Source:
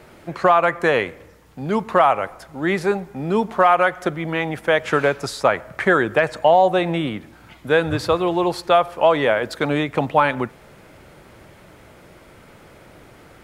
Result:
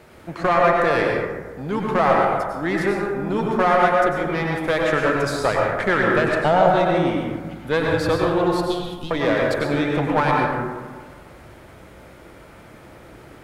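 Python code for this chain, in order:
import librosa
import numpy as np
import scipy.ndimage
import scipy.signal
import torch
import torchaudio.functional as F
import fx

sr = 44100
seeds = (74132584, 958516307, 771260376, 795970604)

y = fx.diode_clip(x, sr, knee_db=-18.0)
y = fx.cheby1_bandstop(y, sr, low_hz=270.0, high_hz=3300.0, order=3, at=(8.51, 9.11))
y = fx.rev_plate(y, sr, seeds[0], rt60_s=1.5, hf_ratio=0.35, predelay_ms=85, drr_db=-1.5)
y = F.gain(torch.from_numpy(y), -2.0).numpy()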